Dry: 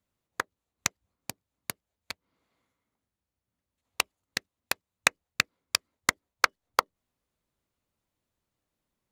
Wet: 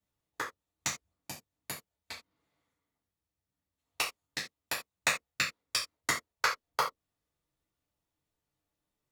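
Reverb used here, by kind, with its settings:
reverb whose tail is shaped and stops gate 110 ms falling, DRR −6.5 dB
level −10.5 dB

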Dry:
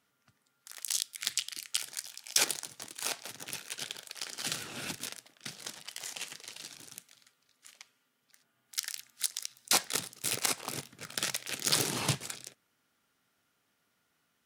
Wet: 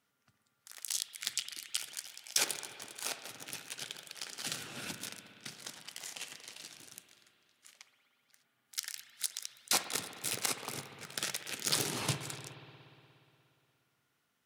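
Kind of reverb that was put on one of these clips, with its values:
spring reverb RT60 2.8 s, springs 59 ms, chirp 65 ms, DRR 8 dB
level −3.5 dB

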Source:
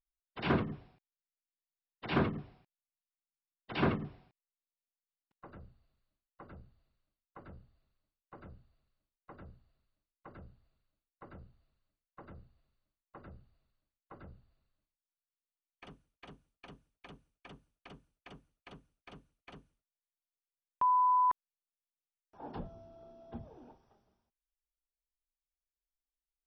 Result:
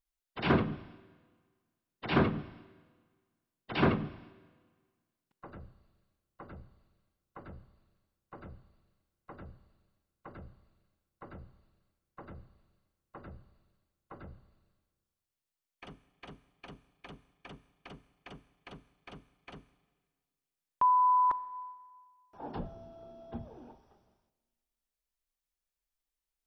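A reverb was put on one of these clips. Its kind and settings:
four-comb reverb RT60 1.6 s, combs from 30 ms, DRR 17.5 dB
level +3.5 dB

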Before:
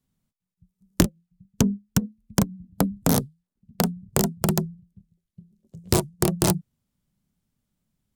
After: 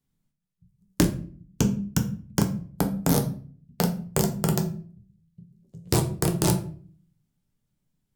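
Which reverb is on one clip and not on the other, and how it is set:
rectangular room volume 39 cubic metres, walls mixed, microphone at 0.41 metres
level −3.5 dB

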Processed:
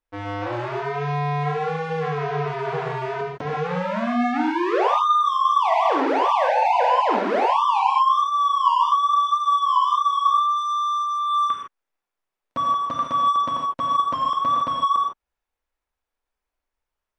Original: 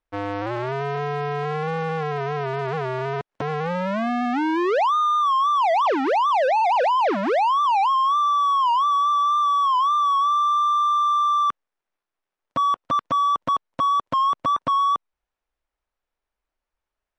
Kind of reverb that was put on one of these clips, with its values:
reverb whose tail is shaped and stops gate 180 ms flat, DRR −2.5 dB
level −4 dB

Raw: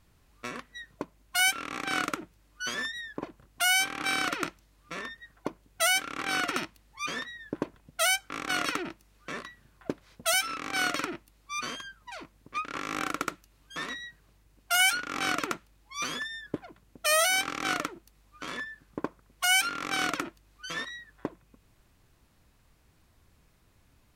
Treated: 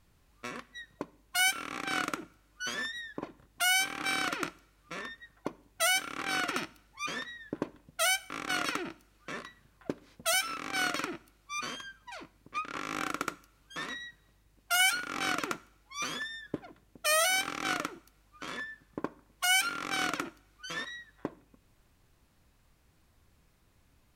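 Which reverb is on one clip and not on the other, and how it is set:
coupled-rooms reverb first 0.55 s, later 1.6 s, DRR 17 dB
level −2.5 dB

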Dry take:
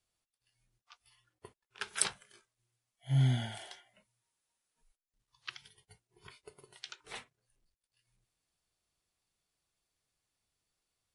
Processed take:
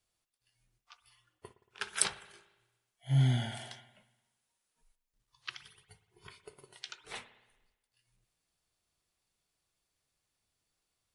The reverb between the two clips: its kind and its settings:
spring reverb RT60 1.1 s, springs 57 ms, chirp 70 ms, DRR 13 dB
level +1.5 dB

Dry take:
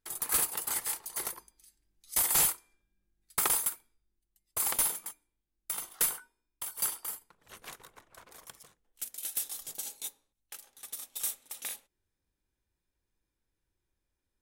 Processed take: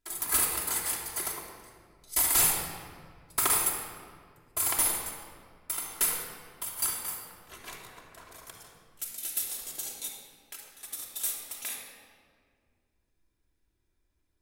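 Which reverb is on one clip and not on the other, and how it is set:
rectangular room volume 3,700 cubic metres, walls mixed, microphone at 3 metres

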